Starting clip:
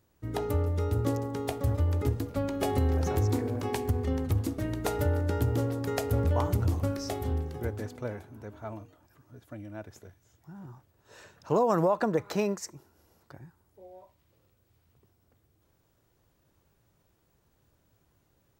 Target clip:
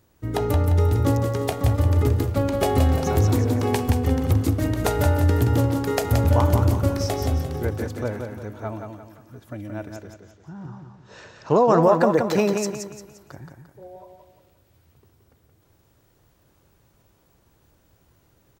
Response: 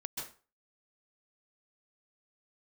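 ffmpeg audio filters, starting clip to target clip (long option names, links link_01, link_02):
-filter_complex "[0:a]asettb=1/sr,asplit=3[link_01][link_02][link_03];[link_01]atrim=end=9.964[link_04];[link_02]atrim=start=9.96:end=11.83,asetpts=PTS-STARTPTS,afade=type=in:duration=0.004:curve=qsin,afade=type=out:start_time=1.866:duration=0.004:curve=qsin,lowpass=frequency=6300:width=0.5412,lowpass=frequency=6300:width=1.3066[link_05];[link_03]atrim=start=11.826[link_06];[link_04][link_05]acrossfade=duration=0.004:curve1=hsin:curve2=qsin[link_07];[link_07][link_06]acrossfade=duration=0.004:curve1=qsin:curve2=hsin,aecho=1:1:174|348|522|696|870:0.531|0.202|0.0767|0.0291|0.0111,volume=7.5dB"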